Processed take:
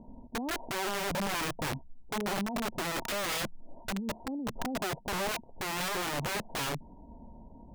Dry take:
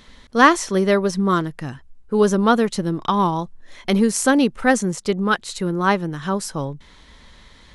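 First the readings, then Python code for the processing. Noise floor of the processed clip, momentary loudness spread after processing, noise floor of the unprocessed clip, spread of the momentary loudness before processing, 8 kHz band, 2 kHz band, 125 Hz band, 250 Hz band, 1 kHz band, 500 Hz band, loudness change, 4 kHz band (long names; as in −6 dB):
−52 dBFS, 10 LU, −49 dBFS, 13 LU, −10.0 dB, −12.0 dB, −15.0 dB, −18.0 dB, −15.0 dB, −16.5 dB, −14.5 dB, −6.0 dB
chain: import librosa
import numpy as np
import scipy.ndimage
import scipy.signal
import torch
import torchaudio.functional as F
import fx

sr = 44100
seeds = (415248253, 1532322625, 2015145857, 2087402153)

y = scipy.signal.sosfilt(scipy.signal.cheby1(6, 9, 960.0, 'lowpass', fs=sr, output='sos'), x)
y = fx.over_compress(y, sr, threshold_db=-29.0, ratio=-1.0)
y = (np.mod(10.0 ** (28.0 / 20.0) * y + 1.0, 2.0) - 1.0) / 10.0 ** (28.0 / 20.0)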